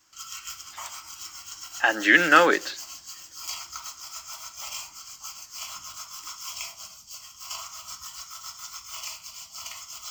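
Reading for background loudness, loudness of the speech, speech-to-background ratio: -37.0 LUFS, -19.0 LUFS, 18.0 dB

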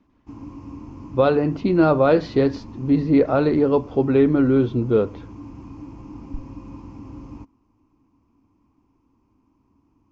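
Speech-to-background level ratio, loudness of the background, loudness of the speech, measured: 20.0 dB, -39.0 LUFS, -19.0 LUFS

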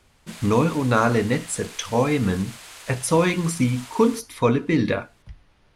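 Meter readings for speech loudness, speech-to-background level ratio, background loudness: -22.5 LUFS, 17.5 dB, -40.0 LUFS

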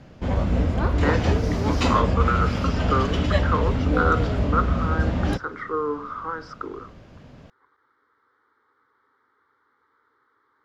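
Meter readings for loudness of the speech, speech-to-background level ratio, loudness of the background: -28.0 LUFS, -4.5 dB, -23.5 LUFS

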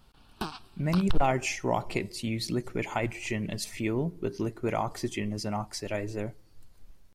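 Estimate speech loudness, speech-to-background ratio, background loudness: -31.5 LUFS, 8.5 dB, -40.0 LUFS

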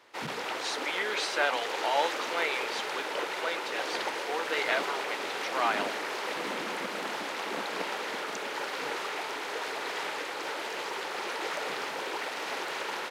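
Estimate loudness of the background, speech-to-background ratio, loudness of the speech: -33.5 LUFS, 0.5 dB, -33.0 LUFS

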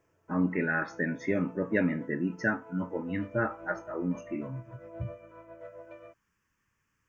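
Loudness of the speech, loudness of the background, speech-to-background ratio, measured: -32.0 LUFS, -49.5 LUFS, 17.5 dB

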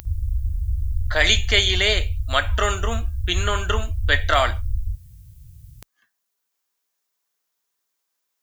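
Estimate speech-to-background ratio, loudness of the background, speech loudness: 6.5 dB, -28.0 LUFS, -21.5 LUFS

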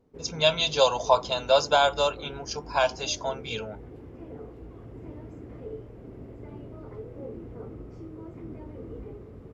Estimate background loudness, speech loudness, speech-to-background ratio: -42.5 LUFS, -24.5 LUFS, 18.0 dB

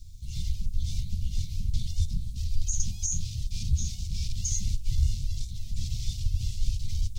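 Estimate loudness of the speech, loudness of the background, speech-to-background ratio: -34.5 LUFS, -33.0 LUFS, -1.5 dB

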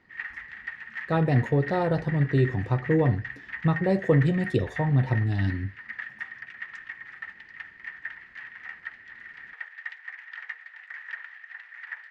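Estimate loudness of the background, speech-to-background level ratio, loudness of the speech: -38.5 LUFS, 13.5 dB, -25.0 LUFS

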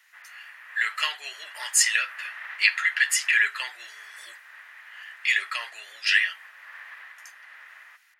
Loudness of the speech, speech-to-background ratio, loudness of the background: -23.5 LUFS, 19.5 dB, -43.0 LUFS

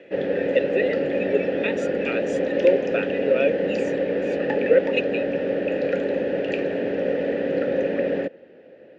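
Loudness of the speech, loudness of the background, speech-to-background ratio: -25.5 LUFS, -24.5 LUFS, -1.0 dB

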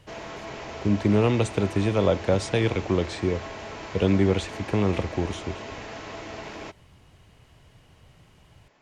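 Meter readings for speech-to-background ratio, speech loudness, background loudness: 12.5 dB, -25.0 LUFS, -37.5 LUFS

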